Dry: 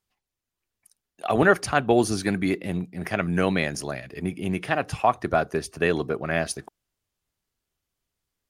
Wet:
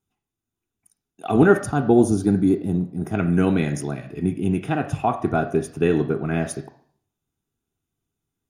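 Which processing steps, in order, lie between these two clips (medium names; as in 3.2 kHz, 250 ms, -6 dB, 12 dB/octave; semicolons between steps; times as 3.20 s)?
1.63–3.15 s: peaking EQ 2.3 kHz -12 dB 1.1 oct; reverberation RT60 0.60 s, pre-delay 3 ms, DRR 6.5 dB; trim -1 dB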